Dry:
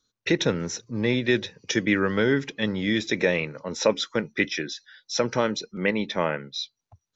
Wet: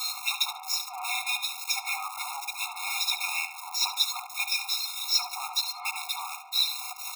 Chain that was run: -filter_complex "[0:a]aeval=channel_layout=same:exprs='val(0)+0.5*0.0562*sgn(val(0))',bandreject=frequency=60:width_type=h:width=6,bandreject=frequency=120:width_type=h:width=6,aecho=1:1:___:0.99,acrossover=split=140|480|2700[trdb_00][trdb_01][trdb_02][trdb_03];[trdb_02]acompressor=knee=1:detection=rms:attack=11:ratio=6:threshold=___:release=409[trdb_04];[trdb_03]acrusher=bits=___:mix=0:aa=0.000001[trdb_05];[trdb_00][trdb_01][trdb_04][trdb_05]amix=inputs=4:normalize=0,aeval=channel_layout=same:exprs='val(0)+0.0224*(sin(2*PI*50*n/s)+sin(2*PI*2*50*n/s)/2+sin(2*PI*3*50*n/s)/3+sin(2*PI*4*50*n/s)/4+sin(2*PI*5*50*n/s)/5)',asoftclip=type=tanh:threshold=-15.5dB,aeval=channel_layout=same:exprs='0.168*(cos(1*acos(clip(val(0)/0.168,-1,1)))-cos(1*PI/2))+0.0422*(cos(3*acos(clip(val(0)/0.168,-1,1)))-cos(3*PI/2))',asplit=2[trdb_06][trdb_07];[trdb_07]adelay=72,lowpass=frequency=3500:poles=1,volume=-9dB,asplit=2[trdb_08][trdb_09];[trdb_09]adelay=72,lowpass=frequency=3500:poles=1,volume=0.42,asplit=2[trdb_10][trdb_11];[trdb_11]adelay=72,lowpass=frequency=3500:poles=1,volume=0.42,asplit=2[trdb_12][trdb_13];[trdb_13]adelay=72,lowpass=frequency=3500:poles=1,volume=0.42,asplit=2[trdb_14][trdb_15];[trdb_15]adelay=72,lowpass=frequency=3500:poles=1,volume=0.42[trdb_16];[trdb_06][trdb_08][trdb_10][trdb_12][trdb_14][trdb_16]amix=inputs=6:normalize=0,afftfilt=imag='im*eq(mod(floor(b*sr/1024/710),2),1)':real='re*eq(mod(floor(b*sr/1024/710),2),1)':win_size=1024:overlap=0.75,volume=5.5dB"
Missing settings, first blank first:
4.1, -34dB, 4